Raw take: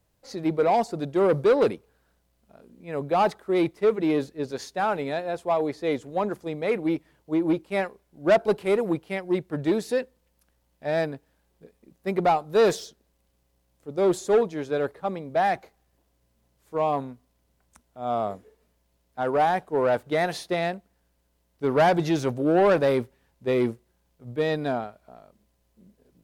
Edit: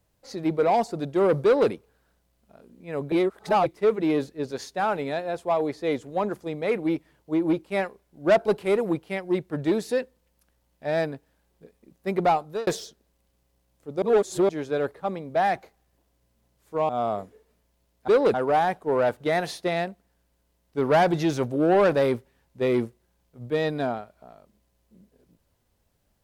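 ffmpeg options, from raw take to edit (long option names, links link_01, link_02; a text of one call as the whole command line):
ffmpeg -i in.wav -filter_complex "[0:a]asplit=9[link_01][link_02][link_03][link_04][link_05][link_06][link_07][link_08][link_09];[link_01]atrim=end=3.122[link_10];[link_02]atrim=start=3.118:end=3.662,asetpts=PTS-STARTPTS,areverse[link_11];[link_03]atrim=start=3.658:end=12.67,asetpts=PTS-STARTPTS,afade=type=out:start_time=8.742:duration=0.27[link_12];[link_04]atrim=start=12.67:end=14.022,asetpts=PTS-STARTPTS,afade=type=in:duration=0.004:curve=hsin[link_13];[link_05]atrim=start=14.018:end=14.492,asetpts=PTS-STARTPTS,areverse[link_14];[link_06]atrim=start=14.488:end=16.892[link_15];[link_07]atrim=start=18.008:end=19.202[link_16];[link_08]atrim=start=1.438:end=1.702[link_17];[link_09]atrim=start=19.198[link_18];[link_10][link_11]acrossfade=duration=0.004:curve1=hsin:curve2=hsin[link_19];[link_12][link_13]concat=n=2:v=0:a=1[link_20];[link_19][link_20]acrossfade=duration=0.004:curve1=hsin:curve2=hsin[link_21];[link_21][link_14]acrossfade=duration=0.004:curve1=hsin:curve2=hsin[link_22];[link_22][link_15]acrossfade=duration=0.004:curve1=hsin:curve2=hsin[link_23];[link_23][link_16]acrossfade=duration=0.004:curve1=hsin:curve2=hsin[link_24];[link_24][link_17]acrossfade=duration=0.004:curve1=hsin:curve2=hsin[link_25];[link_25][link_18]acrossfade=duration=0.004:curve1=hsin:curve2=hsin" out.wav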